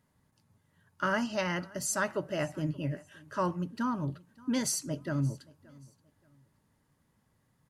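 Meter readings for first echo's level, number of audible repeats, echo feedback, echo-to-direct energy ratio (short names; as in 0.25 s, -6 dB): -23.5 dB, 2, 29%, -23.0 dB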